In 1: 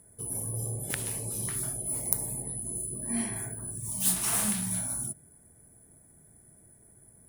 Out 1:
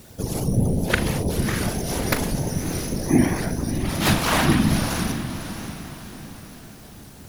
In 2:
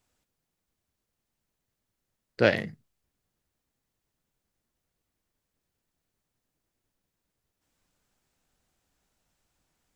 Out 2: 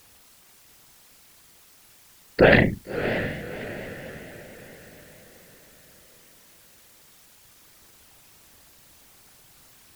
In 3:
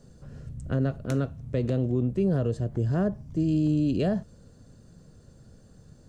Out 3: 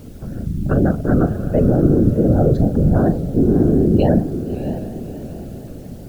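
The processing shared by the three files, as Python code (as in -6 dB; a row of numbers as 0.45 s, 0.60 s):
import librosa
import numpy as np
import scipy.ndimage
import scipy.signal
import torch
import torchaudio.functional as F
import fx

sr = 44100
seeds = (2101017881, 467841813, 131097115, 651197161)

p1 = scipy.signal.medfilt(x, 5)
p2 = fx.spec_gate(p1, sr, threshold_db=-30, keep='strong')
p3 = fx.high_shelf(p2, sr, hz=5400.0, db=-11.0)
p4 = fx.over_compress(p3, sr, threshold_db=-28.0, ratio=-0.5)
p5 = p3 + (p4 * 10.0 ** (2.0 / 20.0))
p6 = fx.quant_dither(p5, sr, seeds[0], bits=10, dither='triangular')
p7 = fx.whisperise(p6, sr, seeds[1])
p8 = fx.doubler(p7, sr, ms=40.0, db=-11.5)
p9 = p8 + fx.echo_diffused(p8, sr, ms=624, feedback_pct=43, wet_db=-10.0, dry=0)
p10 = fx.vibrato_shape(p9, sr, shape='saw_up', rate_hz=4.4, depth_cents=100.0)
y = librosa.util.normalize(p10) * 10.0 ** (-2 / 20.0)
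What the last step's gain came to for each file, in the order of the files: +8.5 dB, +5.5 dB, +6.0 dB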